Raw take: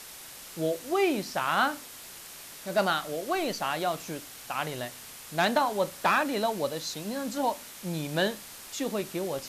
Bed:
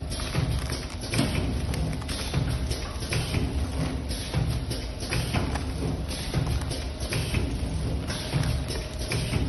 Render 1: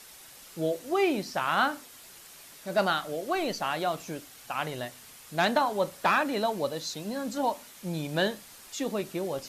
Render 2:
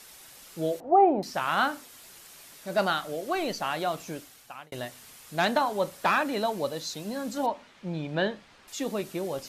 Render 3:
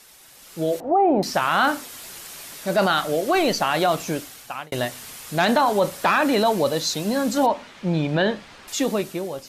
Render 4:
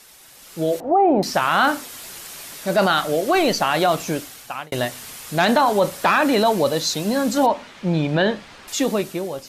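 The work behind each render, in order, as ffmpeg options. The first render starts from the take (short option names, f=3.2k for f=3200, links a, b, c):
-af "afftdn=nr=6:nf=-46"
-filter_complex "[0:a]asettb=1/sr,asplit=3[a][b][c];[a]atrim=end=0.804[d];[b]atrim=start=0.8:end=1.23,asetpts=PTS-STARTPTS,afade=t=in:d=0.004:c=qsin,afade=t=out:st=0.426:d=0.004:c=qsin,lowpass=f=780:t=q:w=5.2[e];[c]atrim=start=1.226[f];[d][e]acrossfade=d=0.004:c1=hsin:c2=qsin[g];[g][f]acrossfade=d=0.004:c1=qsin:c2=hsin,asettb=1/sr,asplit=3[h][i][j];[h]atrim=end=7.464[k];[i]atrim=start=7.46:end=8.68,asetpts=PTS-STARTPTS,afade=t=in:d=0.004:c=qsin,afade=t=out:st=1.216:d=0.004:c=qsin,lowpass=3.1k[l];[j]atrim=start=8.676[m];[k][l]acrossfade=d=0.004:c1=hsin:c2=qsin[n];[n][m]acrossfade=d=0.004:c1=qsin:c2=hsin,asplit=2[o][p];[o]atrim=end=4.72,asetpts=PTS-STARTPTS,afade=t=out:st=4.18:d=0.54[q];[p]atrim=start=4.72,asetpts=PTS-STARTPTS,afade=t=in:d=0.004:c=hsin[r];[q][r]concat=n=2:v=0:a=1"
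-af "alimiter=limit=-21.5dB:level=0:latency=1:release=14,dynaudnorm=f=190:g=7:m=11dB"
-af "volume=2dB"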